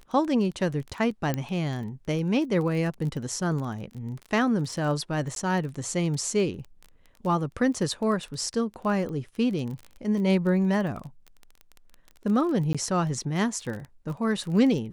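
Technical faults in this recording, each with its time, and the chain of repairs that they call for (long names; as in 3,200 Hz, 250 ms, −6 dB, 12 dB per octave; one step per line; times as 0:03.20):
surface crackle 22 per second −33 dBFS
0:01.34: click −14 dBFS
0:05.35–0:05.36: drop-out 12 ms
0:12.73–0:12.75: drop-out 16 ms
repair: click removal
repair the gap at 0:05.35, 12 ms
repair the gap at 0:12.73, 16 ms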